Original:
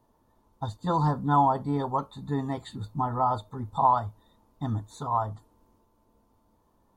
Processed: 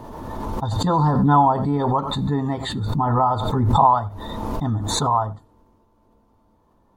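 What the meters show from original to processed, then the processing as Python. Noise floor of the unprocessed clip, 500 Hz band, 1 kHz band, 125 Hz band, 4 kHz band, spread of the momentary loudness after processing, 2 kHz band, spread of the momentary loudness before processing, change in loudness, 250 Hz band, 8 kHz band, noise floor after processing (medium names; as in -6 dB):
-68 dBFS, +8.0 dB, +7.0 dB, +9.5 dB, +17.0 dB, 14 LU, +8.5 dB, 14 LU, +7.5 dB, +9.0 dB, no reading, -60 dBFS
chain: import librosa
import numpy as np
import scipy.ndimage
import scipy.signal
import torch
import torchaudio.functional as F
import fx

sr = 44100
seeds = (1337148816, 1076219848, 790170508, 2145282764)

p1 = fx.high_shelf(x, sr, hz=5300.0, db=-11.0)
p2 = p1 + fx.echo_single(p1, sr, ms=89, db=-21.0, dry=0)
p3 = fx.pre_swell(p2, sr, db_per_s=25.0)
y = F.gain(torch.from_numpy(p3), 6.0).numpy()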